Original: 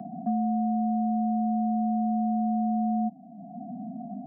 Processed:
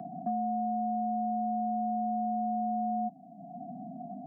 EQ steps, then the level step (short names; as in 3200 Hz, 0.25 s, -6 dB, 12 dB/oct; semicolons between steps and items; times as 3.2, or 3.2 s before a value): bell 220 Hz -9 dB 0.54 oct; 0.0 dB